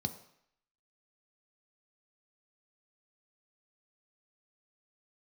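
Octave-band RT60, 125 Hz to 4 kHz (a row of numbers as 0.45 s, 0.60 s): 0.60 s, 0.60 s, 0.65 s, 0.75 s, 0.75 s, 0.70 s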